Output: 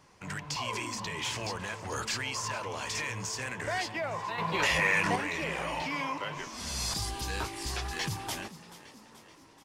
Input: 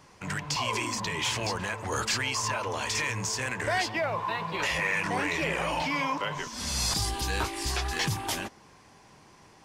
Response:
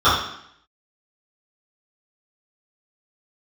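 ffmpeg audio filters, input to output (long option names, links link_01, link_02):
-filter_complex "[0:a]asettb=1/sr,asplit=3[link_01][link_02][link_03];[link_01]atrim=end=4.384[link_04];[link_02]atrim=start=4.38:end=5.16,asetpts=PTS-STARTPTS,afade=type=in:duration=0.004:curve=qsin,afade=type=out:start_time=0.776:duration=0.004:curve=qsin,acontrast=80[link_05];[link_03]atrim=start=5.156[link_06];[link_04][link_05]acrossfade=duration=0.004:curve1=hsin:curve2=qsin[link_07];[link_07][link_06]acrossfade=duration=0.004:curve1=qsin:curve2=hsin,asplit=6[link_08][link_09][link_10][link_11][link_12][link_13];[link_09]adelay=431,afreqshift=54,volume=-16.5dB[link_14];[link_10]adelay=862,afreqshift=108,volume=-21.2dB[link_15];[link_11]adelay=1293,afreqshift=162,volume=-26dB[link_16];[link_12]adelay=1724,afreqshift=216,volume=-30.7dB[link_17];[link_13]adelay=2155,afreqshift=270,volume=-35.4dB[link_18];[link_08][link_14][link_15][link_16][link_17][link_18]amix=inputs=6:normalize=0,volume=-5dB"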